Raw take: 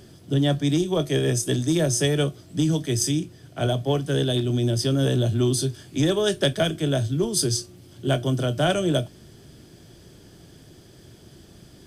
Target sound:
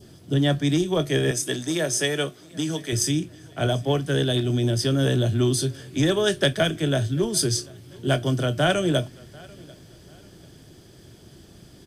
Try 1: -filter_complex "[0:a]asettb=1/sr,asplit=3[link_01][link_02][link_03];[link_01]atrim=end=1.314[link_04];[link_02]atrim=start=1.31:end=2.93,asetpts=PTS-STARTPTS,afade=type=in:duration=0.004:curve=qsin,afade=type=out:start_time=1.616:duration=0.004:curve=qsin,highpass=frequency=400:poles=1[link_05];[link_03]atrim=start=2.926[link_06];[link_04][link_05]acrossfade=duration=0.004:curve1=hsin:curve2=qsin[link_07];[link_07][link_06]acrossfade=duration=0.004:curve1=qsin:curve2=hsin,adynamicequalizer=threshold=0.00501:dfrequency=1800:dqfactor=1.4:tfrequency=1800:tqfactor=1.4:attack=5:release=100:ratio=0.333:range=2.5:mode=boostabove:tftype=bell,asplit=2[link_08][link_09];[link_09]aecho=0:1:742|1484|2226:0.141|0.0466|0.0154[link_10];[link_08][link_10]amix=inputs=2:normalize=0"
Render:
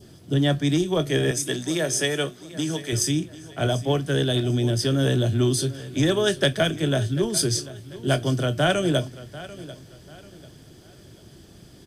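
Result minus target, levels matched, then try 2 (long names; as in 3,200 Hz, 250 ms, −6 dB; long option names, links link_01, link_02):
echo-to-direct +7.5 dB
-filter_complex "[0:a]asettb=1/sr,asplit=3[link_01][link_02][link_03];[link_01]atrim=end=1.314[link_04];[link_02]atrim=start=1.31:end=2.93,asetpts=PTS-STARTPTS,afade=type=in:duration=0.004:curve=qsin,afade=type=out:start_time=1.616:duration=0.004:curve=qsin,highpass=frequency=400:poles=1[link_05];[link_03]atrim=start=2.926[link_06];[link_04][link_05]acrossfade=duration=0.004:curve1=hsin:curve2=qsin[link_07];[link_07][link_06]acrossfade=duration=0.004:curve1=qsin:curve2=hsin,adynamicequalizer=threshold=0.00501:dfrequency=1800:dqfactor=1.4:tfrequency=1800:tqfactor=1.4:attack=5:release=100:ratio=0.333:range=2.5:mode=boostabove:tftype=bell,asplit=2[link_08][link_09];[link_09]aecho=0:1:742|1484:0.0596|0.0197[link_10];[link_08][link_10]amix=inputs=2:normalize=0"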